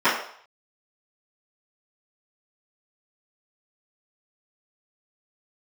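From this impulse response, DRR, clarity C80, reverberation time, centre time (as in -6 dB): -17.0 dB, 8.5 dB, 0.60 s, 39 ms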